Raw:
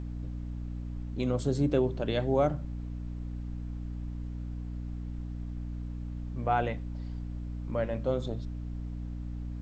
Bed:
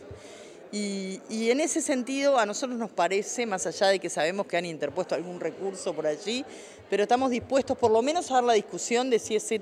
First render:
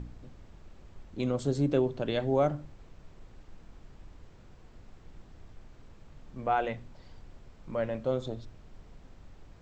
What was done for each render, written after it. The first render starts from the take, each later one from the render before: de-hum 60 Hz, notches 5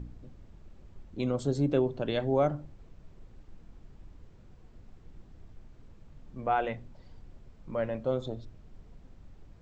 noise reduction 6 dB, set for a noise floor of -54 dBFS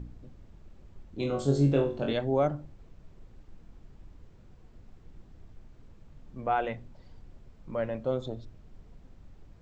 1.16–2.13 s: flutter echo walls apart 3.7 m, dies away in 0.36 s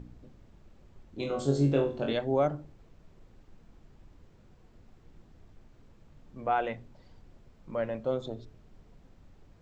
bass shelf 110 Hz -6 dB; de-hum 62.41 Hz, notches 7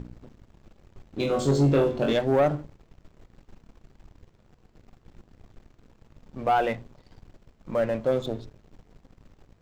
waveshaping leveller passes 2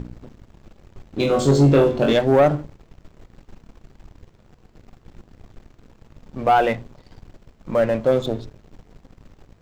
trim +6.5 dB

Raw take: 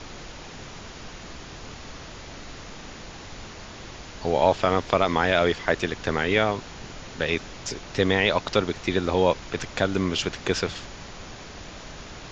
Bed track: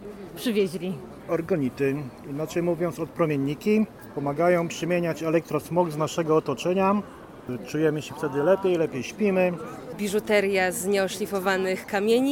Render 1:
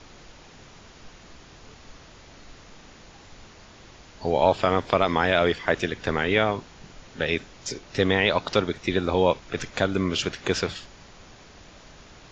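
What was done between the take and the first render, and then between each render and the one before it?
noise print and reduce 8 dB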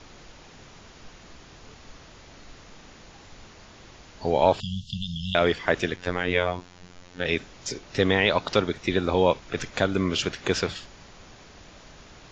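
4.60–5.35 s: brick-wall FIR band-stop 220–2700 Hz; 5.96–7.25 s: robot voice 89.3 Hz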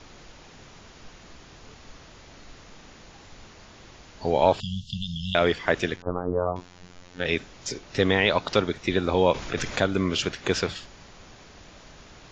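6.02–6.56 s: steep low-pass 1.3 kHz 72 dB/octave; 9.34–9.80 s: level flattener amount 50%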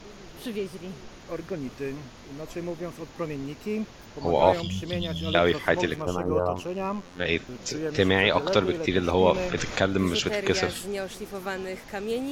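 add bed track -8.5 dB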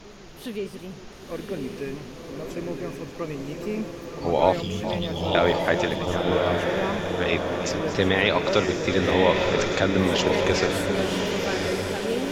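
chunks repeated in reverse 312 ms, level -12 dB; echo that smears into a reverb 1058 ms, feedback 53%, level -3 dB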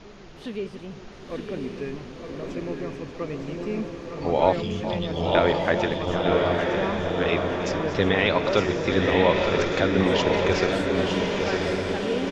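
distance through air 96 m; delay 910 ms -7.5 dB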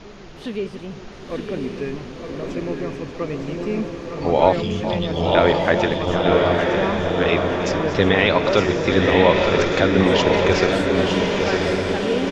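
trim +5 dB; peak limiter -2 dBFS, peak gain reduction 2.5 dB

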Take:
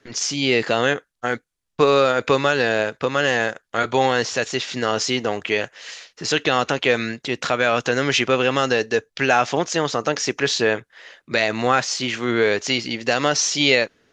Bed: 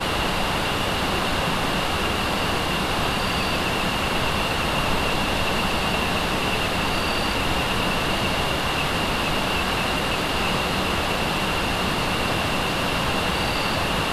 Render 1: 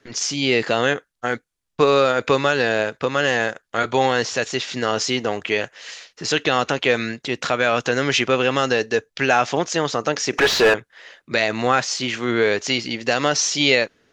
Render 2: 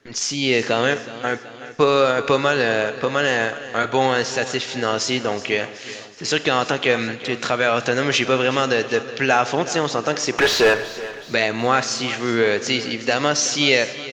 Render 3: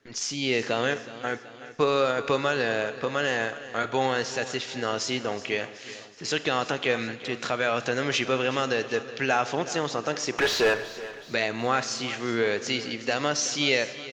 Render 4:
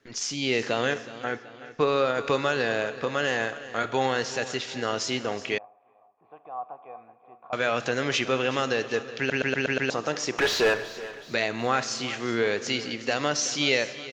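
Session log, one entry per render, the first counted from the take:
10.33–10.74 s: overdrive pedal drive 27 dB, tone 1.6 kHz, clips at -5.5 dBFS
feedback delay 374 ms, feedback 51%, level -16 dB; Schroeder reverb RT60 1.6 s, combs from 27 ms, DRR 13.5 dB
trim -7 dB
1.24–2.15 s: distance through air 83 m; 5.58–7.53 s: cascade formant filter a; 9.18 s: stutter in place 0.12 s, 6 plays

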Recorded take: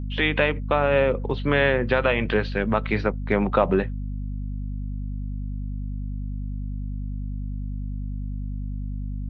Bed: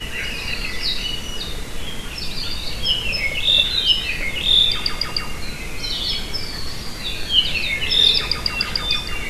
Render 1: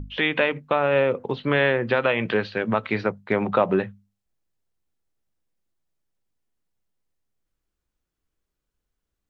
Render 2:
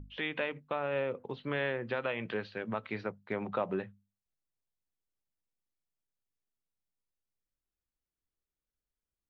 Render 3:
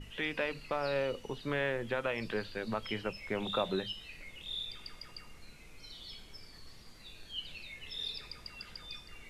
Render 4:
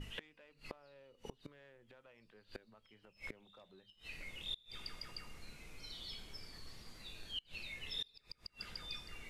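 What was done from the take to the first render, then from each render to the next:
hum notches 50/100/150/200/250 Hz
trim -13 dB
add bed -25.5 dB
saturation -24.5 dBFS, distortion -18 dB; inverted gate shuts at -31 dBFS, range -27 dB

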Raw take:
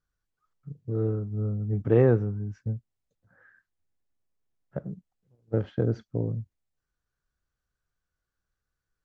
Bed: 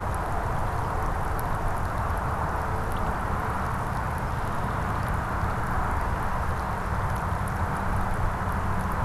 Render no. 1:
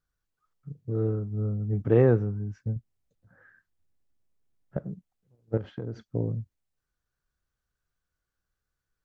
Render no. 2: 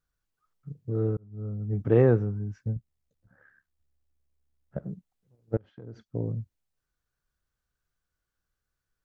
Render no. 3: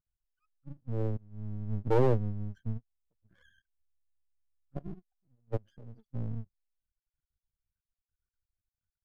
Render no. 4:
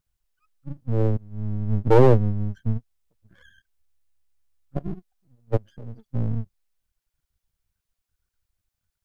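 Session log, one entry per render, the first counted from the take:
2.76–4.77 s: bass shelf 400 Hz +6 dB; 5.57–6.06 s: compression 5:1, threshold -31 dBFS
1.17–2.02 s: fade in equal-power; 2.77–4.83 s: AM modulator 70 Hz, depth 45%; 5.57–6.41 s: fade in, from -23.5 dB
spectral contrast enhancement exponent 2.4; half-wave rectifier
trim +10.5 dB

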